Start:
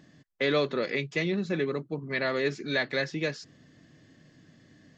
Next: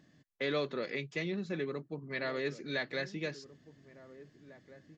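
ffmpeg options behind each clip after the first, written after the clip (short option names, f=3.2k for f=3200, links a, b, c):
-filter_complex "[0:a]asplit=2[a][b];[b]adelay=1749,volume=-16dB,highshelf=f=4k:g=-39.4[c];[a][c]amix=inputs=2:normalize=0,volume=-7.5dB"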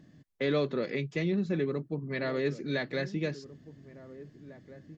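-af "lowshelf=f=470:g=10"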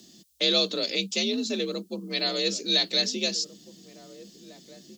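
-af "aexciter=amount=13.8:drive=4.9:freq=2.9k,afreqshift=54"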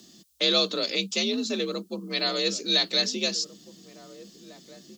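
-af "equalizer=f=1.2k:w=1.7:g=6.5"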